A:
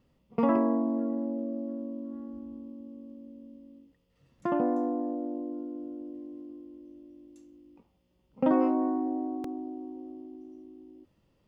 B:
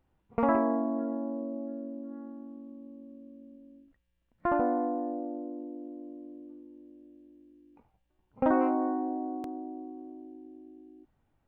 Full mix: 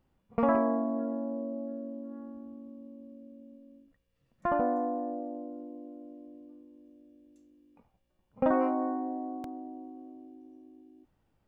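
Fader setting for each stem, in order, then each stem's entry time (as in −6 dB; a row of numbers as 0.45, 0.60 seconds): −10.0, −1.0 decibels; 0.00, 0.00 seconds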